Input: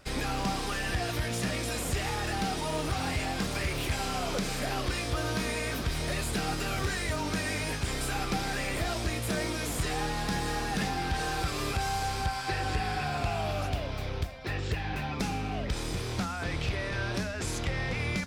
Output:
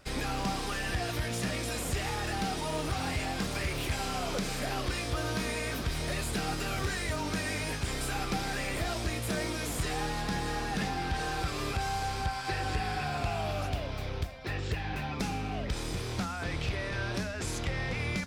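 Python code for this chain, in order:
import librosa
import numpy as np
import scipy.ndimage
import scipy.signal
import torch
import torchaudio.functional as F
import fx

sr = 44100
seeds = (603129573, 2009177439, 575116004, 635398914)

y = fx.high_shelf(x, sr, hz=7000.0, db=-4.5, at=(10.21, 12.45))
y = F.gain(torch.from_numpy(y), -1.5).numpy()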